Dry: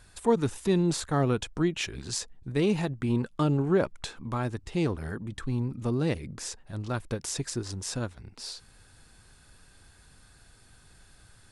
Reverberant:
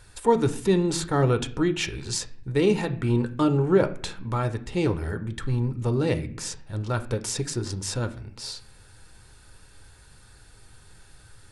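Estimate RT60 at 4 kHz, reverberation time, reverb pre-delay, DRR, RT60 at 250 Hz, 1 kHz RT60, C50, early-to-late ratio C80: 0.45 s, 0.55 s, 10 ms, 8.5 dB, 0.95 s, 0.50 s, 15.0 dB, 19.0 dB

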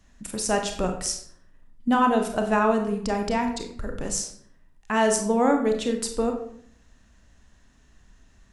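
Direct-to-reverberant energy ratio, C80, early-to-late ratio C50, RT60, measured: 4.0 dB, 10.5 dB, 7.5 dB, 0.65 s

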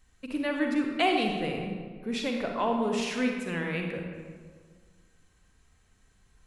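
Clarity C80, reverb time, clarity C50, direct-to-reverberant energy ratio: 4.5 dB, 1.7 s, 2.5 dB, 2.0 dB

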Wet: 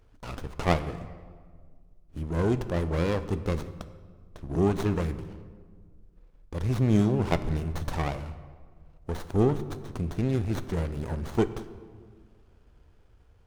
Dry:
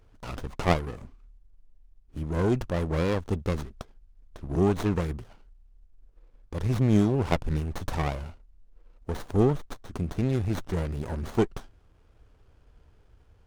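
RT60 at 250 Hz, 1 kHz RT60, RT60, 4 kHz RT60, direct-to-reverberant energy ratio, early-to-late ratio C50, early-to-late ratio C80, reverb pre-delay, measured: 2.2 s, 1.6 s, 1.8 s, 1.1 s, 11.5 dB, 13.0 dB, 14.5 dB, 10 ms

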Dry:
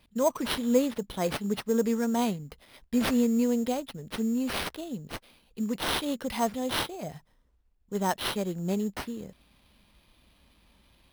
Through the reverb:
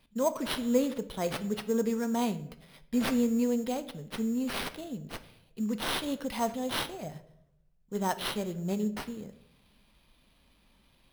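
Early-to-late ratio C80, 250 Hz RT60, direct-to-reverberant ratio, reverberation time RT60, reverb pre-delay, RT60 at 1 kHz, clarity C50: 18.0 dB, 0.90 s, 10.5 dB, 0.75 s, 4 ms, 0.65 s, 15.0 dB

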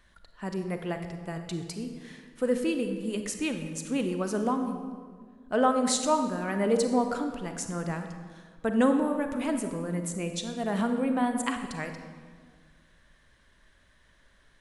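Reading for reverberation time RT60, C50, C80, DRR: 1.8 s, 7.0 dB, 8.5 dB, 6.0 dB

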